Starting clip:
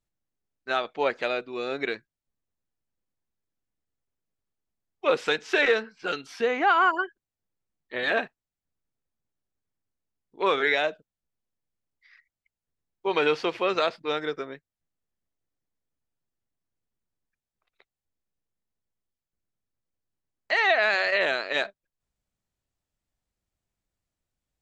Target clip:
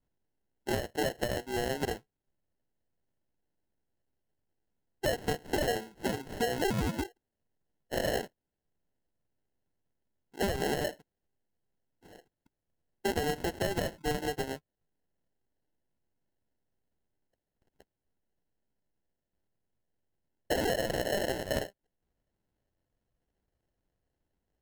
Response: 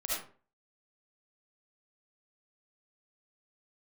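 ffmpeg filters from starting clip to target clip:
-af "acrusher=samples=37:mix=1:aa=0.000001,acompressor=threshold=0.0282:ratio=6,volume=1.41"

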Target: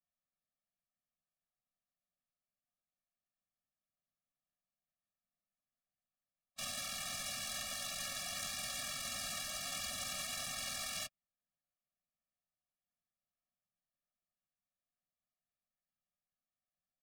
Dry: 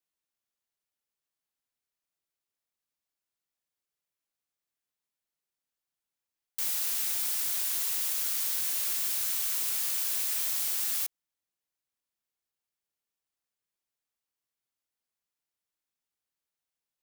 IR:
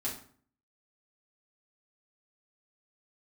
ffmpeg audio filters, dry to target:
-filter_complex "[0:a]aecho=1:1:5.6:0.87,asplit=4[s0][s1][s2][s3];[s1]asetrate=22050,aresample=44100,atempo=2,volume=0.708[s4];[s2]asetrate=37084,aresample=44100,atempo=1.18921,volume=0.316[s5];[s3]asetrate=52444,aresample=44100,atempo=0.840896,volume=0.316[s6];[s0][s4][s5][s6]amix=inputs=4:normalize=0,adynamicsmooth=sensitivity=6:basefreq=1700,afftfilt=real='re*eq(mod(floor(b*sr/1024/270),2),0)':imag='im*eq(mod(floor(b*sr/1024/270),2),0)':win_size=1024:overlap=0.75,volume=0.668"

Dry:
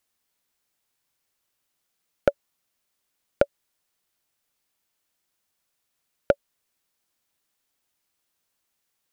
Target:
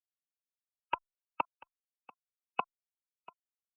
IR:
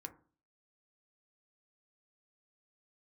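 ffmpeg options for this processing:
-filter_complex "[0:a]highpass=78,aemphasis=mode=production:type=50kf,bandreject=f=198.3:t=h:w=4,bandreject=f=396.6:t=h:w=4,bandreject=f=594.9:t=h:w=4,bandreject=f=793.2:t=h:w=4,bandreject=f=991.5:t=h:w=4,bandreject=f=1189.8:t=h:w=4,bandreject=f=1388.1:t=h:w=4,bandreject=f=1586.4:t=h:w=4,bandreject=f=1784.7:t=h:w=4,bandreject=f=1983:t=h:w=4,bandreject=f=2181.3:t=h:w=4,bandreject=f=2379.6:t=h:w=4,afftfilt=real='re*gte(hypot(re,im),0.1)':imag='im*gte(hypot(re,im),0.1)':win_size=1024:overlap=0.75,superequalizer=9b=2:11b=2.51:15b=0.355:16b=2,acrossover=split=110|1200|2400[s0][s1][s2][s3];[s0]acompressor=threshold=0.00224:ratio=4[s4];[s1]acompressor=threshold=0.0794:ratio=4[s5];[s2]acompressor=threshold=0.02:ratio=4[s6];[s3]acompressor=threshold=0.00141:ratio=4[s7];[s4][s5][s6][s7]amix=inputs=4:normalize=0,atempo=1.4,tremolo=f=190:d=0.571,asplit=2[s8][s9];[s9]aecho=0:1:1196:0.0841[s10];[s8][s10]amix=inputs=2:normalize=0,asetrate=76440,aresample=44100,asplit=2[s11][s12];[s12]adelay=2.4,afreqshift=-0.32[s13];[s11][s13]amix=inputs=2:normalize=1,volume=1.19"

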